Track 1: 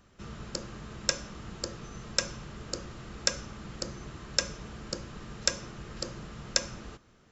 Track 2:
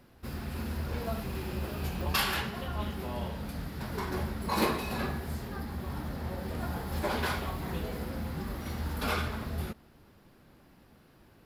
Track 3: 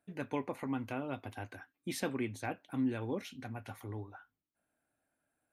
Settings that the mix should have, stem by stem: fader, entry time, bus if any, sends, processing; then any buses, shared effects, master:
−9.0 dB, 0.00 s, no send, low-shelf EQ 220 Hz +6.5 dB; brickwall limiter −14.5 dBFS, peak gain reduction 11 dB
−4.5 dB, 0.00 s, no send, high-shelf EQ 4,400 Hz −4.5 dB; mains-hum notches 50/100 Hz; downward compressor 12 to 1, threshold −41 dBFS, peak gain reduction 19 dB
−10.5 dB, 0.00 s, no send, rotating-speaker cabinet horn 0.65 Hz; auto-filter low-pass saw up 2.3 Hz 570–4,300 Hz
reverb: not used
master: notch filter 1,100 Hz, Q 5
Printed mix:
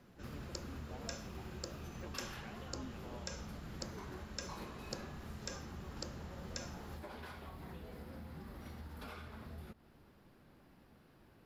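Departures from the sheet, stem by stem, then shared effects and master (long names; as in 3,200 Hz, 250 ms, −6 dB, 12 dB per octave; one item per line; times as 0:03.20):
stem 1: missing low-shelf EQ 220 Hz +6.5 dB
stem 3 −10.5 dB → −17.5 dB
master: missing notch filter 1,100 Hz, Q 5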